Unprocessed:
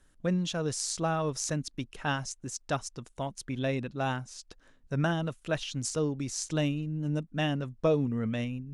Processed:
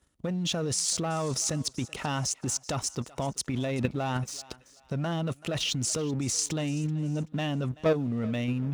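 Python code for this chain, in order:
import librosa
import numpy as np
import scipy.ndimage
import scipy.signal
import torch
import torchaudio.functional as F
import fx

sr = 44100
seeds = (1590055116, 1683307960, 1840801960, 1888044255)

p1 = fx.notch(x, sr, hz=1600.0, q=6.7)
p2 = fx.leveller(p1, sr, passes=2)
p3 = fx.over_compress(p2, sr, threshold_db=-27.0, ratio=-0.5)
p4 = p2 + F.gain(torch.from_numpy(p3), 2.0).numpy()
p5 = scipy.signal.sosfilt(scipy.signal.butter(4, 47.0, 'highpass', fs=sr, output='sos'), p4)
p6 = fx.level_steps(p5, sr, step_db=9)
p7 = p6 + fx.echo_thinned(p6, sr, ms=382, feedback_pct=35, hz=490.0, wet_db=-19, dry=0)
y = F.gain(torch.from_numpy(p7), -2.5).numpy()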